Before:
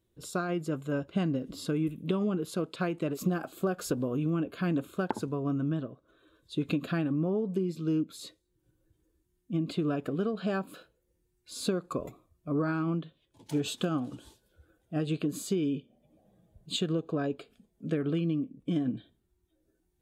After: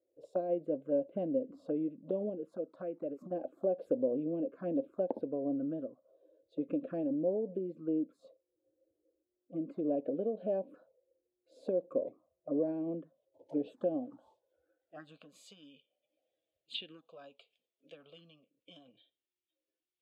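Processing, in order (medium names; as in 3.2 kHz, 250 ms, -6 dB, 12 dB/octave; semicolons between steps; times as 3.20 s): 2.29–3.31 s: compression 4:1, threshold -32 dBFS, peak gain reduction 8.5 dB; band-pass sweep 590 Hz -> 2.8 kHz, 13.86–15.65 s; touch-sensitive phaser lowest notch 190 Hz, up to 1.3 kHz, full sweep at -37 dBFS; small resonant body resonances 270/520 Hz, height 12 dB, ringing for 25 ms; trim -2 dB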